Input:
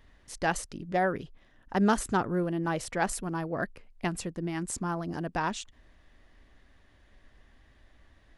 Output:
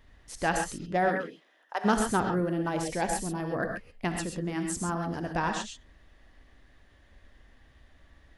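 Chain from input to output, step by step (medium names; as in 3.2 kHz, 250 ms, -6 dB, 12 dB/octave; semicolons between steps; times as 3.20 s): 1.08–1.84 s: high-pass 170 Hz -> 630 Hz 24 dB/octave; 2.69–3.40 s: peaking EQ 1.3 kHz -12.5 dB 0.52 oct; gated-style reverb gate 150 ms rising, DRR 3.5 dB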